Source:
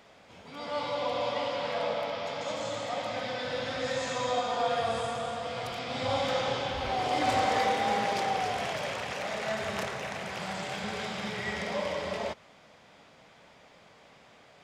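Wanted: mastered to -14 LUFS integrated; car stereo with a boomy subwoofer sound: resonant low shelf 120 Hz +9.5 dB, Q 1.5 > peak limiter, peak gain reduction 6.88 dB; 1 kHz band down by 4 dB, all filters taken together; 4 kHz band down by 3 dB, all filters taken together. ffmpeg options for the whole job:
-af "lowshelf=f=120:t=q:w=1.5:g=9.5,equalizer=f=1000:t=o:g=-5.5,equalizer=f=4000:t=o:g=-3.5,volume=10.6,alimiter=limit=0.708:level=0:latency=1"

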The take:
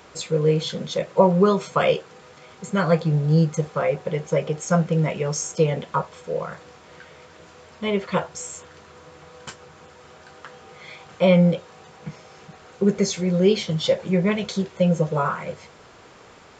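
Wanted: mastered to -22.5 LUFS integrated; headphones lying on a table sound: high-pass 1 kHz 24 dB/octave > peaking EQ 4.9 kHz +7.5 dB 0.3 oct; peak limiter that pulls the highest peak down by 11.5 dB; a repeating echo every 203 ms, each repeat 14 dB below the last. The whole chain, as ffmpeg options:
-af "alimiter=limit=0.2:level=0:latency=1,highpass=f=1000:w=0.5412,highpass=f=1000:w=1.3066,equalizer=f=4900:t=o:w=0.3:g=7.5,aecho=1:1:203|406:0.2|0.0399,volume=3.35"

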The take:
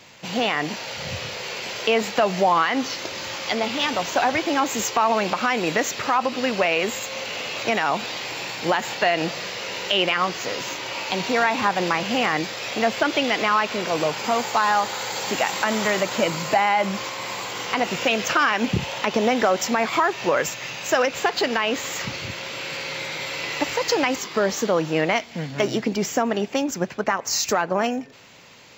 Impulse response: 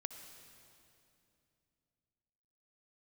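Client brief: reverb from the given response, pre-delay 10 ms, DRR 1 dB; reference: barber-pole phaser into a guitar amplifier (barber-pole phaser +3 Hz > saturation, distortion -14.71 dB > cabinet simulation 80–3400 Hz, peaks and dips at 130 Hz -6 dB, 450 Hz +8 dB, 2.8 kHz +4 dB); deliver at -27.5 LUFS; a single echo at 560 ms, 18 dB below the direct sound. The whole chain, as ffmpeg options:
-filter_complex "[0:a]aecho=1:1:560:0.126,asplit=2[s0][s1];[1:a]atrim=start_sample=2205,adelay=10[s2];[s1][s2]afir=irnorm=-1:irlink=0,volume=1.19[s3];[s0][s3]amix=inputs=2:normalize=0,asplit=2[s4][s5];[s5]afreqshift=3[s6];[s4][s6]amix=inputs=2:normalize=1,asoftclip=threshold=0.168,highpass=80,equalizer=f=130:t=q:w=4:g=-6,equalizer=f=450:t=q:w=4:g=8,equalizer=f=2800:t=q:w=4:g=4,lowpass=f=3400:w=0.5412,lowpass=f=3400:w=1.3066,volume=0.631"

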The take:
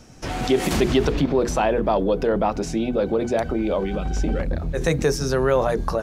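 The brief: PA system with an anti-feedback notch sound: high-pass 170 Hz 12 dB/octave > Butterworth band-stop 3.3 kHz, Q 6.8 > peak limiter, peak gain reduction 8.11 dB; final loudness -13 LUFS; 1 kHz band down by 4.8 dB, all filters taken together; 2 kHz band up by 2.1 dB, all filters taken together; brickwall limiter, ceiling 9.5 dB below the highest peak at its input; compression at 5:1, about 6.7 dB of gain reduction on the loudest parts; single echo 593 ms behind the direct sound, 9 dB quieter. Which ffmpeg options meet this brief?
-af "equalizer=f=1000:t=o:g=-8.5,equalizer=f=2000:t=o:g=5.5,acompressor=threshold=0.0794:ratio=5,alimiter=limit=0.0944:level=0:latency=1,highpass=170,asuperstop=centerf=3300:order=8:qfactor=6.8,aecho=1:1:593:0.355,volume=11.9,alimiter=limit=0.596:level=0:latency=1"

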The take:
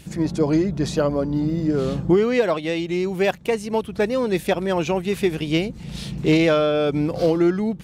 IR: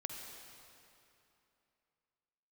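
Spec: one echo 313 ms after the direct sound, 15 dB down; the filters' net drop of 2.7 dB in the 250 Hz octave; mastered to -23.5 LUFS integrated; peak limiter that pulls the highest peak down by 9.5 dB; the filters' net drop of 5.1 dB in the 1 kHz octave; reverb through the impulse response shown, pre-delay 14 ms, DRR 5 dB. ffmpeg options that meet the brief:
-filter_complex "[0:a]equalizer=f=250:t=o:g=-3.5,equalizer=f=1000:t=o:g=-7,alimiter=limit=0.119:level=0:latency=1,aecho=1:1:313:0.178,asplit=2[s0][s1];[1:a]atrim=start_sample=2205,adelay=14[s2];[s1][s2]afir=irnorm=-1:irlink=0,volume=0.631[s3];[s0][s3]amix=inputs=2:normalize=0,volume=1.33"

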